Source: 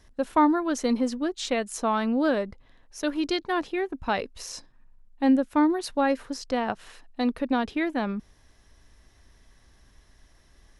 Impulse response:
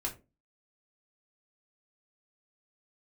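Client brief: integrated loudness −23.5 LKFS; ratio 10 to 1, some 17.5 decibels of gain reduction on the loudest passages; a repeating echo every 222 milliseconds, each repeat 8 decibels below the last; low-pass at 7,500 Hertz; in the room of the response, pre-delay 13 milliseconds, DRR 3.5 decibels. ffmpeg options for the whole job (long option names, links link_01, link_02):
-filter_complex "[0:a]lowpass=7500,acompressor=threshold=-34dB:ratio=10,aecho=1:1:222|444|666|888|1110:0.398|0.159|0.0637|0.0255|0.0102,asplit=2[link_01][link_02];[1:a]atrim=start_sample=2205,adelay=13[link_03];[link_02][link_03]afir=irnorm=-1:irlink=0,volume=-5.5dB[link_04];[link_01][link_04]amix=inputs=2:normalize=0,volume=13dB"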